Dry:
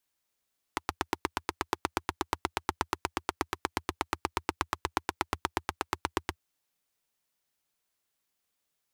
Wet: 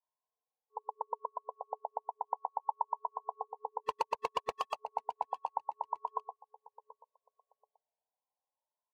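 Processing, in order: FFT band-pass 420–1100 Hz; 3.86–4.74 s: waveshaping leveller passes 3; feedback delay 733 ms, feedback 27%, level -18 dB; Shepard-style flanger rising 0.34 Hz; trim +3 dB

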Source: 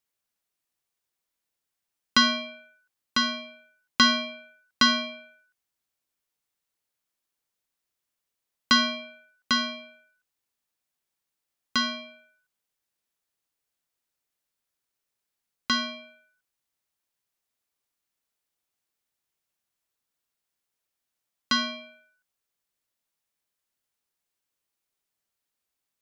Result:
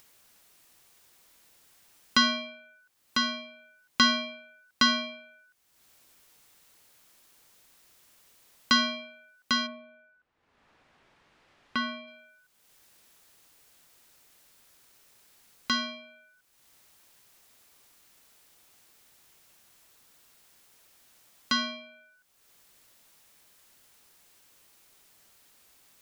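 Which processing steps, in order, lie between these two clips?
9.66–12.06 s: low-pass 1.4 kHz -> 2.9 kHz 12 dB/octave; upward compressor, threshold -37 dBFS; trim -2.5 dB

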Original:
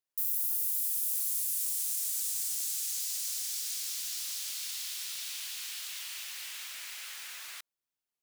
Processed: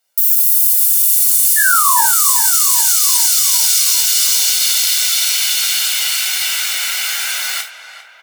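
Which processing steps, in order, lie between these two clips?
Bessel high-pass 290 Hz, order 2; comb 1.4 ms, depth 60%; painted sound fall, 1.56–2.04 s, 860–1800 Hz -32 dBFS; on a send: filtered feedback delay 399 ms, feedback 65%, low-pass 1.9 kHz, level -9.5 dB; on the sum: gated-style reverb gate 110 ms falling, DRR 0.5 dB; loudness maximiser +20.5 dB; trim -1 dB

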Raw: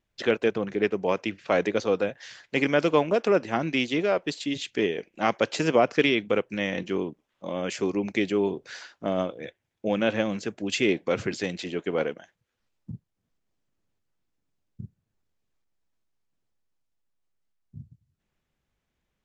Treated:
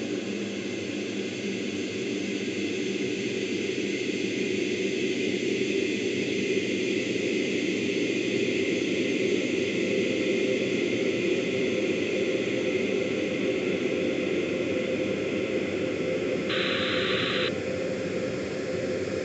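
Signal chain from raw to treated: rotary cabinet horn 5.5 Hz; Paulstretch 28×, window 1.00 s, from 10.53 s; painted sound noise, 16.49–17.49 s, 1.1–4.1 kHz -30 dBFS

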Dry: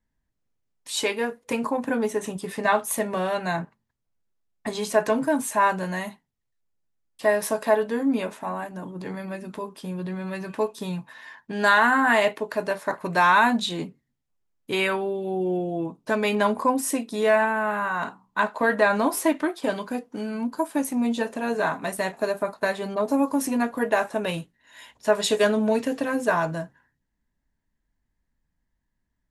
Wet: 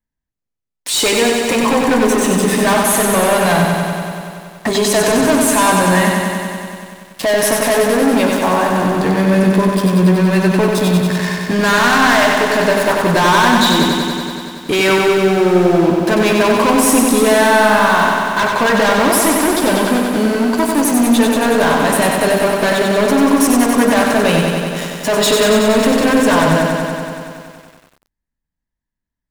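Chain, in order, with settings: waveshaping leveller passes 5; loudness maximiser +14.5 dB; bit-crushed delay 94 ms, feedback 80%, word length 6-bit, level -4 dB; trim -10.5 dB

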